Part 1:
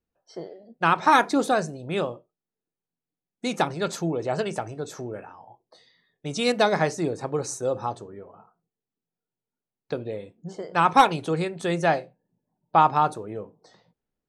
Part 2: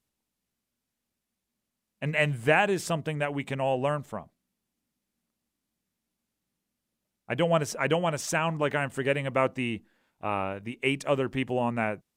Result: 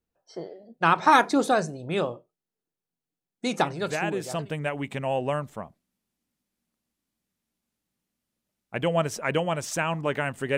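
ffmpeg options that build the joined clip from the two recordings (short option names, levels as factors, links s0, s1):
-filter_complex "[0:a]apad=whole_dur=10.57,atrim=end=10.57,atrim=end=4.55,asetpts=PTS-STARTPTS[s0];[1:a]atrim=start=2.13:end=9.13,asetpts=PTS-STARTPTS[s1];[s0][s1]acrossfade=d=0.98:c1=tri:c2=tri"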